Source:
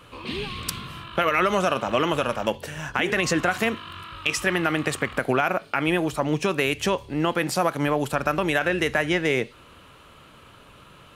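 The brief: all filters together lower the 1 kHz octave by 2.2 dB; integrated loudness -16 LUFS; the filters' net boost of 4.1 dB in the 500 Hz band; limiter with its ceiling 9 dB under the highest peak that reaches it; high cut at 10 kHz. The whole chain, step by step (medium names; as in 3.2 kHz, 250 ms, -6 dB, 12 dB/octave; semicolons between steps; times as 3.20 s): low-pass 10 kHz; peaking EQ 500 Hz +6.5 dB; peaking EQ 1 kHz -5.5 dB; trim +11.5 dB; peak limiter -5 dBFS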